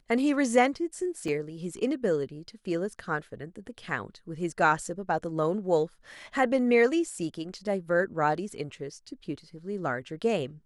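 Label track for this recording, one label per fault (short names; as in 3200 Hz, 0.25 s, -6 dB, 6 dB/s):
1.280000	1.280000	gap 3.1 ms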